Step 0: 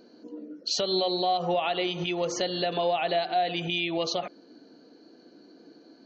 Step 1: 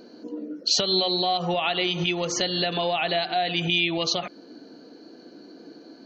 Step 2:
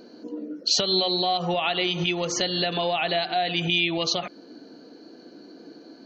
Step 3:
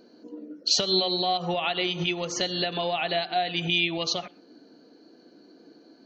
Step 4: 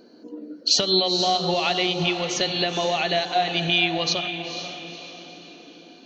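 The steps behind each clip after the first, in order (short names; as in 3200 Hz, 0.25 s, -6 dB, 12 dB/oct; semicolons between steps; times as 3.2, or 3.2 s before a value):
dynamic EQ 550 Hz, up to -8 dB, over -39 dBFS, Q 0.75; gain +7 dB
nothing audible
on a send at -20.5 dB: reverb, pre-delay 3 ms; on the sum: upward expander 1.5:1, over -34 dBFS
diffused feedback echo 0.491 s, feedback 44%, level -8.5 dB; gain +3.5 dB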